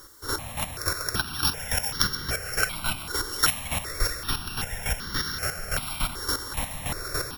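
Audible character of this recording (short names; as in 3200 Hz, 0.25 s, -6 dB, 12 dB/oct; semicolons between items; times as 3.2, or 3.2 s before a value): a buzz of ramps at a fixed pitch in blocks of 8 samples; chopped level 3.5 Hz, depth 65%, duty 25%; a quantiser's noise floor 10-bit, dither triangular; notches that jump at a steady rate 2.6 Hz 680–2500 Hz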